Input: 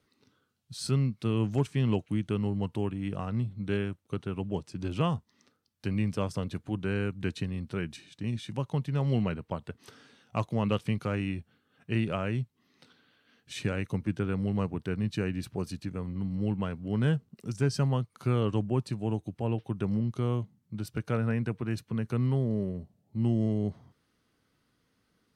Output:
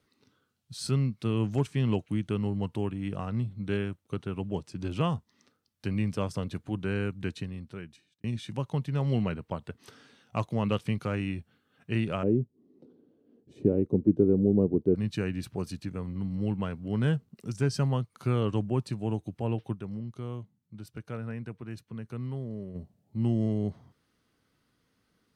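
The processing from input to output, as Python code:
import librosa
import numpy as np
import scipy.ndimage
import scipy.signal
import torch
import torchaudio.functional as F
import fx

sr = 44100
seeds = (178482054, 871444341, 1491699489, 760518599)

y = fx.curve_eq(x, sr, hz=(120.0, 380.0, 1600.0), db=(0, 14, -25), at=(12.23, 14.95))
y = fx.edit(y, sr, fx.fade_out_span(start_s=7.09, length_s=1.15),
    fx.fade_down_up(start_s=19.74, length_s=3.02, db=-8.0, fade_s=0.12, curve='exp'), tone=tone)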